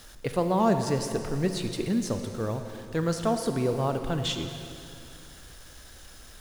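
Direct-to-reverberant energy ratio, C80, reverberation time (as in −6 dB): 6.5 dB, 7.5 dB, 2.7 s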